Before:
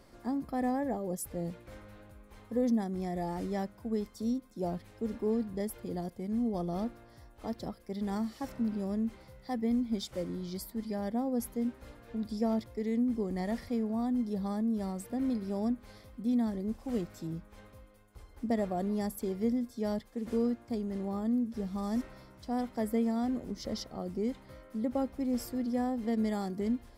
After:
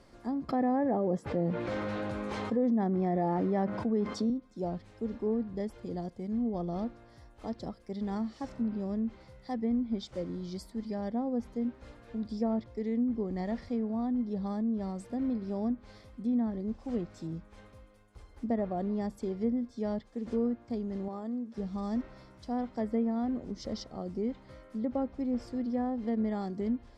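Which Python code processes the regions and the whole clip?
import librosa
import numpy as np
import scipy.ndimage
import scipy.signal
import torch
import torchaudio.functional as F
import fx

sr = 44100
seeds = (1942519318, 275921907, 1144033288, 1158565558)

y = fx.chain(x, sr, fx.highpass(hz=150.0, slope=12),
    fx.env_flatten(amount_pct=70), at=(0.49, 4.3))
y = fx.chain(y, sr, fx.highpass(hz=740.0, slope=6),
    fx.tilt_shelf(db=4.5, hz=1400.0), at=(21.08, 21.58))
y = fx.dynamic_eq(y, sr, hz=2300.0, q=0.82, threshold_db=-55.0, ratio=4.0, max_db=-3)
y = fx.env_lowpass_down(y, sr, base_hz=2000.0, full_db=-26.0)
y = scipy.signal.sosfilt(scipy.signal.butter(2, 8500.0, 'lowpass', fs=sr, output='sos'), y)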